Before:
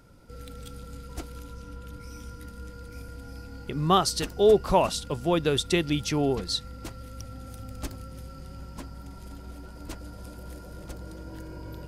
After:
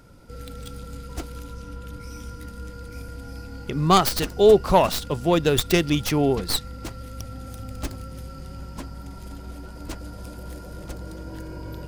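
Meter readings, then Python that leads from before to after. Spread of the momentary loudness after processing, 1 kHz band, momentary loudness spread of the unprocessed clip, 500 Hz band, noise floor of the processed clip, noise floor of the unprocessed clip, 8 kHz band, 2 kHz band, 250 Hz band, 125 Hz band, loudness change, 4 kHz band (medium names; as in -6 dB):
20 LU, +4.5 dB, 20 LU, +4.5 dB, -40 dBFS, -44 dBFS, +3.5 dB, +5.0 dB, +4.5 dB, +4.5 dB, +4.5 dB, +3.0 dB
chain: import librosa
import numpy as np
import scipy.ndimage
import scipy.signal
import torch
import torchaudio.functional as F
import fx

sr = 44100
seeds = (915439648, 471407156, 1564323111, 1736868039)

y = fx.tracing_dist(x, sr, depth_ms=0.18)
y = y * 10.0 ** (4.5 / 20.0)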